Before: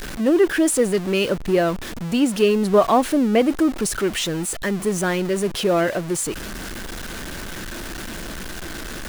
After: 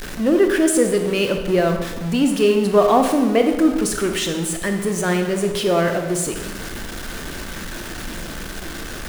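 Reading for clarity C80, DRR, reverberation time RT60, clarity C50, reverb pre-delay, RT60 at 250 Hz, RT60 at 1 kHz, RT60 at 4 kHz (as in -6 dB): 8.5 dB, 4.5 dB, 1.2 s, 6.5 dB, 20 ms, 1.4 s, 1.2 s, 1.0 s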